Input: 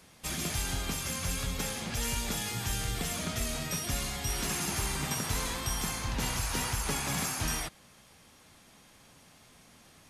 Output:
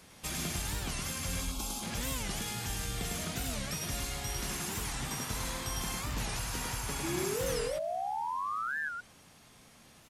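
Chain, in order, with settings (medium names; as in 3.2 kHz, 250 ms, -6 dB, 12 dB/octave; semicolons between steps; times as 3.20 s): in parallel at -3 dB: compression, threshold -40 dBFS, peak gain reduction 12.5 dB; 1.41–1.83 s: on the sum: static phaser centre 490 Hz, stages 6; gain riding 0.5 s; 7.03–8.91 s: painted sound rise 320–1700 Hz -30 dBFS; delay 103 ms -3 dB; warped record 45 rpm, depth 250 cents; trim -6.5 dB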